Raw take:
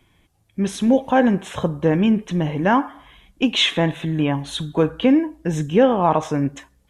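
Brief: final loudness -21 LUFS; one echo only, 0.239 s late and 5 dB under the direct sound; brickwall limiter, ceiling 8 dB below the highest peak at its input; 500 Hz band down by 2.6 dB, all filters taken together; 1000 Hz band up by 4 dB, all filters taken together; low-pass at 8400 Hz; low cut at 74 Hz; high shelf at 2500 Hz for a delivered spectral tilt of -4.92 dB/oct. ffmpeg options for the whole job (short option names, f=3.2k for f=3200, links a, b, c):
-af "highpass=74,lowpass=8.4k,equalizer=f=500:t=o:g=-4.5,equalizer=f=1k:t=o:g=7,highshelf=f=2.5k:g=-3.5,alimiter=limit=-10.5dB:level=0:latency=1,aecho=1:1:239:0.562"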